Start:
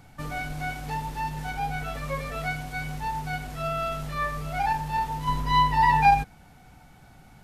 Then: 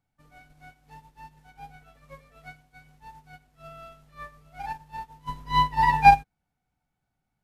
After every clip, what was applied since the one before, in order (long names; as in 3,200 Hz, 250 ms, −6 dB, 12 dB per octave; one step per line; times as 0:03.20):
expander for the loud parts 2.5 to 1, over −37 dBFS
level +5.5 dB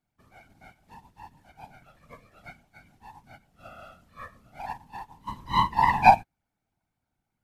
random phases in short frames
level −1.5 dB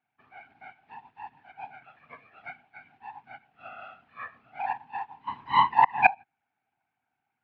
gate with flip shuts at −9 dBFS, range −27 dB
loudspeaker in its box 190–3,300 Hz, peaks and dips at 190 Hz −9 dB, 330 Hz −5 dB, 550 Hz −9 dB, 780 Hz +9 dB, 1,600 Hz +7 dB, 2,500 Hz +8 dB